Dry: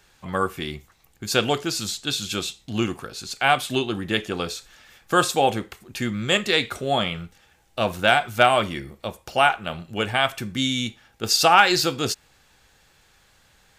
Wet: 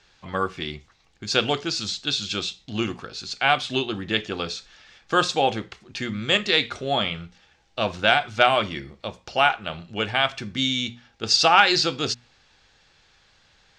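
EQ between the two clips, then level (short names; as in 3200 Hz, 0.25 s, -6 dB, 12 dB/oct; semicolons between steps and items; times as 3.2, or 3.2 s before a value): LPF 5400 Hz 24 dB/oct; high shelf 3900 Hz +8.5 dB; notches 60/120/180/240 Hz; -2.0 dB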